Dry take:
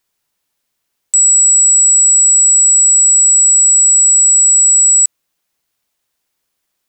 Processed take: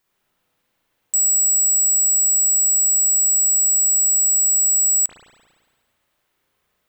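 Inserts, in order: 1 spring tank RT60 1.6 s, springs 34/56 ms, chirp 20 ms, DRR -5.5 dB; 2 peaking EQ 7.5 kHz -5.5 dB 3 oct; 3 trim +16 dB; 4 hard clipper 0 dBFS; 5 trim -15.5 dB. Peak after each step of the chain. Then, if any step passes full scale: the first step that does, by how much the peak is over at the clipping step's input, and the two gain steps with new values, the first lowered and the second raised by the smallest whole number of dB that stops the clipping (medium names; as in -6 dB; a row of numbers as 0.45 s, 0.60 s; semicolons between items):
-5.0 dBFS, -9.5 dBFS, +6.5 dBFS, 0.0 dBFS, -15.5 dBFS; step 3, 6.5 dB; step 3 +9 dB, step 5 -8.5 dB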